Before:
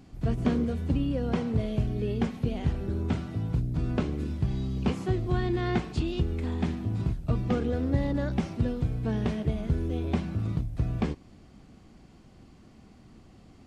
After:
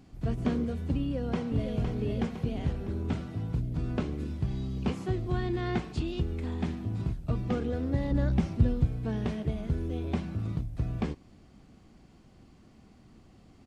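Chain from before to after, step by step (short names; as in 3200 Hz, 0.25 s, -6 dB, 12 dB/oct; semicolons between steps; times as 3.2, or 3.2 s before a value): 1–1.7 echo throw 0.51 s, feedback 55%, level -5.5 dB; 8.11–8.85 low shelf 160 Hz +10.5 dB; gain -3 dB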